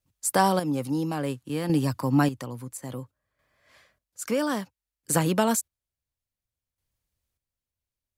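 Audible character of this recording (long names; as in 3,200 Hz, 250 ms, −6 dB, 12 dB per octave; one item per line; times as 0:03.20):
chopped level 0.59 Hz, depth 60%, duty 35%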